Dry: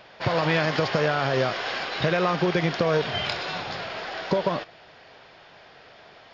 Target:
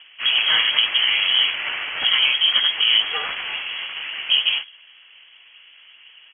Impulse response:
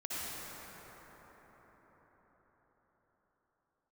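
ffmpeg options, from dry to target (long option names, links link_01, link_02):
-filter_complex "[0:a]bandreject=frequency=75.38:width_type=h:width=4,bandreject=frequency=150.76:width_type=h:width=4,bandreject=frequency=226.14:width_type=h:width=4,bandreject=frequency=301.52:width_type=h:width=4,asplit=2[link_01][link_02];[link_02]asoftclip=type=tanh:threshold=-19.5dB,volume=-10.5dB[link_03];[link_01][link_03]amix=inputs=2:normalize=0,asetrate=31183,aresample=44100,atempo=1.41421,adynamicsmooth=sensitivity=1.5:basefreq=940,asplit=3[link_04][link_05][link_06];[link_05]asetrate=52444,aresample=44100,atempo=0.840896,volume=-3dB[link_07];[link_06]asetrate=58866,aresample=44100,atempo=0.749154,volume=-1dB[link_08];[link_04][link_07][link_08]amix=inputs=3:normalize=0,lowpass=frequency=2900:width_type=q:width=0.5098,lowpass=frequency=2900:width_type=q:width=0.6013,lowpass=frequency=2900:width_type=q:width=0.9,lowpass=frequency=2900:width_type=q:width=2.563,afreqshift=-3400"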